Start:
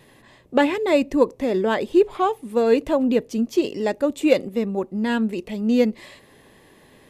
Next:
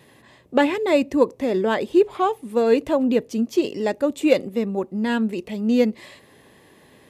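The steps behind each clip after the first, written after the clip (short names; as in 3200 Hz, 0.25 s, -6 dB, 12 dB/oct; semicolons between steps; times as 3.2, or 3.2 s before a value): HPF 61 Hz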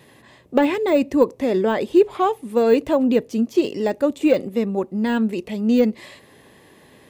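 de-esser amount 90%; gain +2 dB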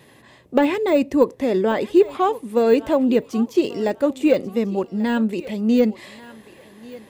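thinning echo 1.138 s, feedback 28%, high-pass 520 Hz, level -16.5 dB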